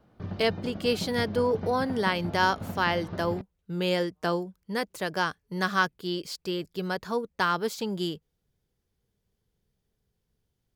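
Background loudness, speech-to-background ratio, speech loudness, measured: -38.0 LUFS, 9.0 dB, -29.0 LUFS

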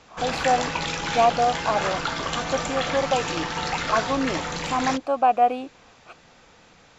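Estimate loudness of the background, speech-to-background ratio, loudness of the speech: -27.5 LUFS, 3.0 dB, -24.5 LUFS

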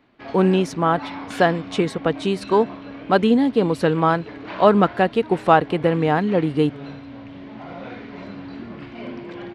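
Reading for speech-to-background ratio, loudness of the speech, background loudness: 16.5 dB, -19.5 LUFS, -36.0 LUFS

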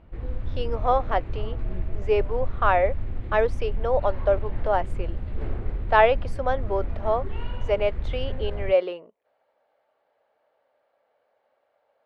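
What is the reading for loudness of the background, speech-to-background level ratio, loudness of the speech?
-34.0 LUFS, 9.0 dB, -25.0 LUFS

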